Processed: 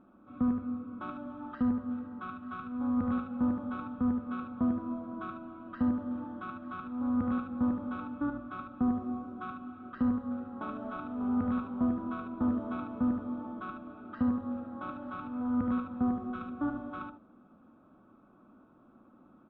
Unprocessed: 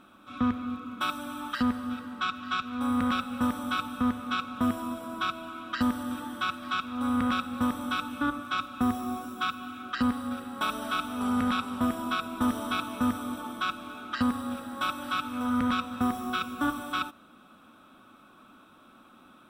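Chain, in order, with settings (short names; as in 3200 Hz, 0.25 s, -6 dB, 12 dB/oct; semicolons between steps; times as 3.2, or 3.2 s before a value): Bessel low-pass 600 Hz, order 2; notches 50/100 Hz; on a send: echo 74 ms -6 dB; on the sum: gain -1.5 dB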